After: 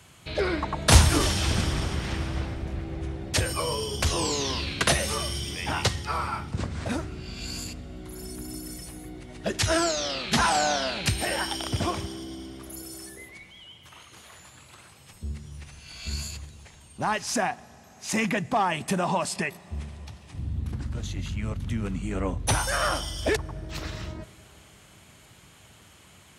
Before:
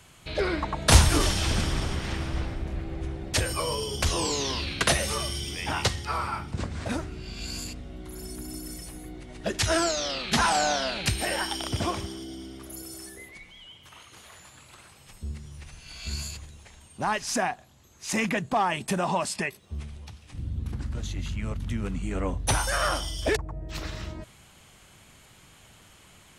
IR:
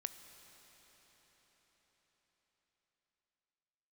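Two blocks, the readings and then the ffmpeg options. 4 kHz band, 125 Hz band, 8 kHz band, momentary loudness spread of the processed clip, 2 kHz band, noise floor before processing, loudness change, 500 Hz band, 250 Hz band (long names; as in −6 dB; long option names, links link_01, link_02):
+0.5 dB, +1.5 dB, +0.5 dB, 17 LU, +0.5 dB, −54 dBFS, +0.5 dB, +0.5 dB, +1.0 dB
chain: -filter_complex "[0:a]highpass=63,asplit=2[link_01][link_02];[1:a]atrim=start_sample=2205,lowshelf=frequency=220:gain=10.5[link_03];[link_02][link_03]afir=irnorm=-1:irlink=0,volume=-9.5dB[link_04];[link_01][link_04]amix=inputs=2:normalize=0,volume=-1.5dB"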